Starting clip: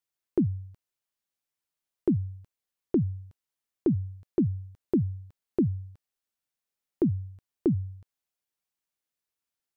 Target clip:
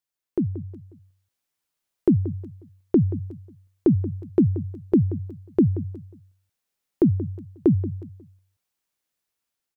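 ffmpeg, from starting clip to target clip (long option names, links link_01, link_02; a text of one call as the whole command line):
ffmpeg -i in.wav -filter_complex "[0:a]asplit=2[link_01][link_02];[link_02]adelay=180,lowpass=frequency=2000:poles=1,volume=-14dB,asplit=2[link_03][link_04];[link_04]adelay=180,lowpass=frequency=2000:poles=1,volume=0.33,asplit=2[link_05][link_06];[link_06]adelay=180,lowpass=frequency=2000:poles=1,volume=0.33[link_07];[link_01][link_03][link_05][link_07]amix=inputs=4:normalize=0,dynaudnorm=framelen=120:gausssize=13:maxgain=6.5dB" out.wav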